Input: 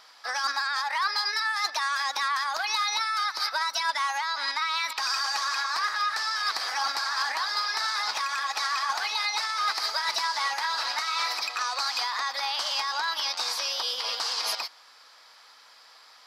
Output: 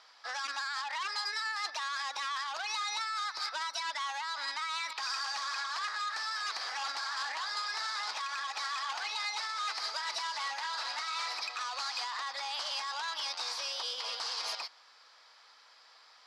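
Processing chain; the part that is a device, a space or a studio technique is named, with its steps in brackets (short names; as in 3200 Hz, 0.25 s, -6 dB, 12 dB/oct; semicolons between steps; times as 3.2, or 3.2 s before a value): public-address speaker with an overloaded transformer (core saturation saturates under 3300 Hz; BPF 250–7000 Hz); gain -5.5 dB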